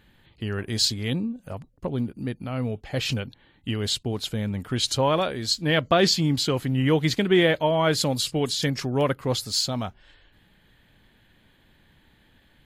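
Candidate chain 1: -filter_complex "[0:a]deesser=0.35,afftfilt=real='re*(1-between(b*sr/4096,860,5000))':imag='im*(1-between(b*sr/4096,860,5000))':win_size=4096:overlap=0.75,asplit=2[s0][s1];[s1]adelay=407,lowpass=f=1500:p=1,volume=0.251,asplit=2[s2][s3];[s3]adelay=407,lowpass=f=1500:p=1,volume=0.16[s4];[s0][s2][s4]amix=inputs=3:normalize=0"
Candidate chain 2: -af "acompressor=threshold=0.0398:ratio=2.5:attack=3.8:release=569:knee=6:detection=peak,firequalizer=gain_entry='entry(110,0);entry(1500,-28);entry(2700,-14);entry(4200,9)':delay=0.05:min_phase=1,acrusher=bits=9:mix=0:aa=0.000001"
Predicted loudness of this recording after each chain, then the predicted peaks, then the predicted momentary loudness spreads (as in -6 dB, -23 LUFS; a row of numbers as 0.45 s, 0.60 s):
-26.0 LUFS, -28.0 LUFS; -9.5 dBFS, -9.0 dBFS; 11 LU, 15 LU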